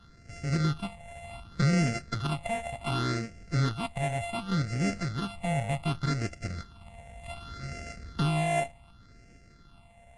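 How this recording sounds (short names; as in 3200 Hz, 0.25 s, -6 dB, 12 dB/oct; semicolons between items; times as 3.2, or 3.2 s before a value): a buzz of ramps at a fixed pitch in blocks of 64 samples; phasing stages 6, 0.67 Hz, lowest notch 340–1000 Hz; AAC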